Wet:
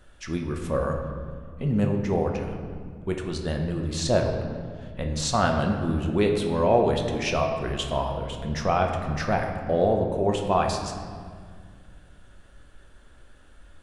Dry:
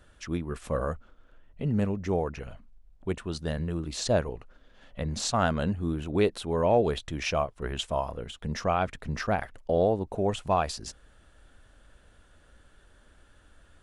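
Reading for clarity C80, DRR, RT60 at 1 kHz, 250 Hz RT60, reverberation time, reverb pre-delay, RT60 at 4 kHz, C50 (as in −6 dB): 6.5 dB, 2.0 dB, 1.8 s, 2.9 s, 1.9 s, 5 ms, 1.2 s, 5.0 dB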